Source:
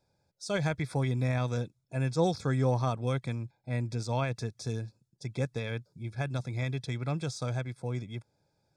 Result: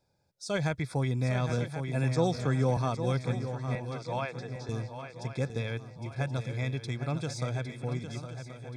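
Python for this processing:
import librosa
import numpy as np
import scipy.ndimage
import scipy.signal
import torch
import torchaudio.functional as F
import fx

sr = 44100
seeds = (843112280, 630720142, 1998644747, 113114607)

y = fx.bandpass_edges(x, sr, low_hz=480.0, high_hz=3600.0, at=(3.75, 4.69))
y = fx.echo_swing(y, sr, ms=1078, ratio=3, feedback_pct=41, wet_db=-9.5)
y = fx.band_squash(y, sr, depth_pct=40, at=(1.49, 2.77))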